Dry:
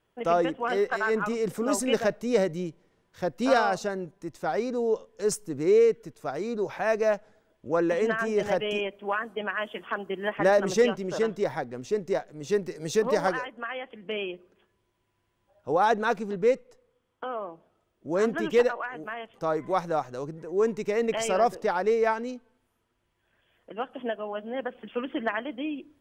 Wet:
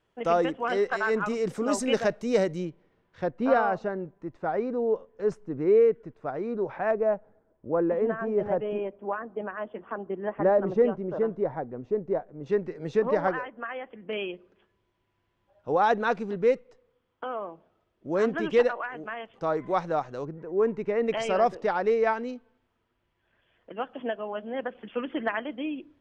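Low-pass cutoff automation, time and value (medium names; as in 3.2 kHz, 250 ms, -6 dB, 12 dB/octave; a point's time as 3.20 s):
7.5 kHz
from 2.65 s 3.1 kHz
from 3.30 s 1.7 kHz
from 6.91 s 1 kHz
from 12.46 s 2 kHz
from 14.13 s 4.4 kHz
from 20.25 s 2 kHz
from 21.07 s 4.1 kHz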